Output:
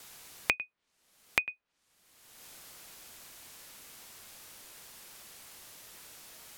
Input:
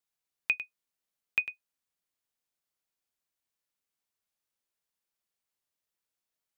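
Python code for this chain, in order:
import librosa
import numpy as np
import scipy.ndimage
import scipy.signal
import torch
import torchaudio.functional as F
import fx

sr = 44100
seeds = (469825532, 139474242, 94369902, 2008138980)

y = fx.env_lowpass_down(x, sr, base_hz=2200.0, full_db=-37.5)
y = fx.band_squash(y, sr, depth_pct=100)
y = y * 10.0 ** (8.0 / 20.0)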